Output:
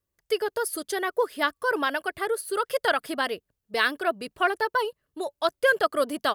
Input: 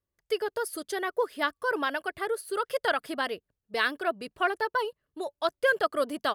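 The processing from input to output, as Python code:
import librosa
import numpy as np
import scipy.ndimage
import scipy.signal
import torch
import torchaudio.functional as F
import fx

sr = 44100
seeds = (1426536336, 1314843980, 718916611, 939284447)

y = fx.high_shelf(x, sr, hz=7500.0, db=5.0)
y = F.gain(torch.from_numpy(y), 3.0).numpy()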